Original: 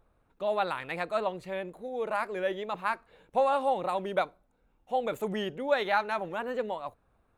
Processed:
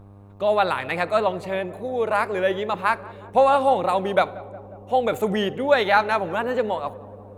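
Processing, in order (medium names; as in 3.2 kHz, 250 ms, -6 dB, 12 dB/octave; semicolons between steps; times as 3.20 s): on a send at -20.5 dB: reverberation RT60 1.2 s, pre-delay 4 ms; on the sum: mains buzz 100 Hz, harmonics 12, -55 dBFS -7 dB/octave; tape echo 182 ms, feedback 88%, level -17 dB, low-pass 1 kHz; trim +9 dB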